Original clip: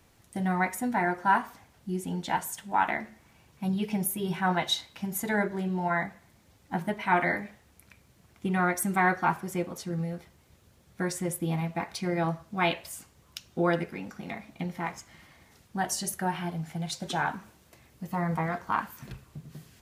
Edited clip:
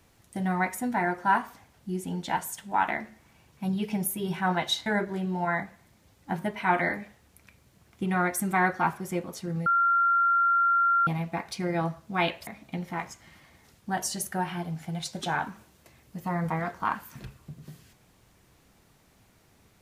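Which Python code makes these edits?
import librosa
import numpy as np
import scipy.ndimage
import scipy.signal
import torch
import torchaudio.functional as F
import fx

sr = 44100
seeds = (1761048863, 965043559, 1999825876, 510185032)

y = fx.edit(x, sr, fx.cut(start_s=4.86, length_s=0.43),
    fx.bleep(start_s=10.09, length_s=1.41, hz=1380.0, db=-19.5),
    fx.cut(start_s=12.9, length_s=1.44), tone=tone)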